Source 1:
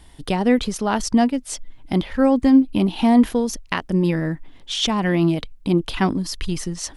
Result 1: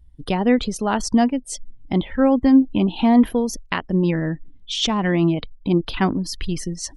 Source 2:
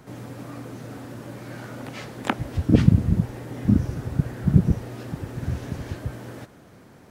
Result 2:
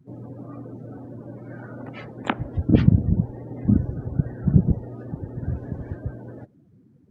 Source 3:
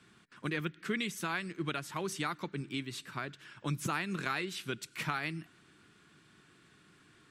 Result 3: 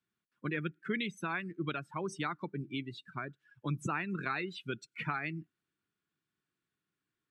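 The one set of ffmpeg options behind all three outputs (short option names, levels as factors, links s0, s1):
-af "afftdn=nr=27:nf=-39"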